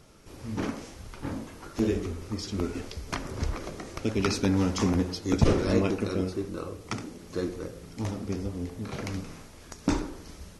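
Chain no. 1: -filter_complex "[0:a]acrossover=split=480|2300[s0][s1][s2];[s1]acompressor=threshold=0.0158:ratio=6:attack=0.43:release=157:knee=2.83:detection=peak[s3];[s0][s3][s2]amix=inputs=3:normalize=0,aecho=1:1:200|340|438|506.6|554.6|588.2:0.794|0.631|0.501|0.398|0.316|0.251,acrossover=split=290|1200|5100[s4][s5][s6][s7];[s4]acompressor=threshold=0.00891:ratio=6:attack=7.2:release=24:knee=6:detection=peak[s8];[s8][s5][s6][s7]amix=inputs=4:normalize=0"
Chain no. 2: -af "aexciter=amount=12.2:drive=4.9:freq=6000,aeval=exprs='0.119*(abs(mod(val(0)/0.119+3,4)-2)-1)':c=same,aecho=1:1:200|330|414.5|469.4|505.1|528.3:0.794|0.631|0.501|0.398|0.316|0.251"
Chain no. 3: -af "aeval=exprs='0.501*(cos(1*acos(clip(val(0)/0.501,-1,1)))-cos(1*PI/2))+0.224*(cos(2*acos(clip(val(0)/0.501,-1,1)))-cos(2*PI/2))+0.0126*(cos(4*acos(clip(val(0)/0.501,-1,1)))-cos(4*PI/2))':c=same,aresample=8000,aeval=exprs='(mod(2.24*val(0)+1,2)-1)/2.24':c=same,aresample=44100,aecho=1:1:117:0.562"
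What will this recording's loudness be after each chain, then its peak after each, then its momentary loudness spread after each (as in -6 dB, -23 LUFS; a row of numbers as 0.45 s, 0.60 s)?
-31.5 LUFS, -24.5 LUFS, -30.0 LUFS; -14.5 dBFS, -10.0 dBFS, -4.5 dBFS; 9 LU, 8 LU, 13 LU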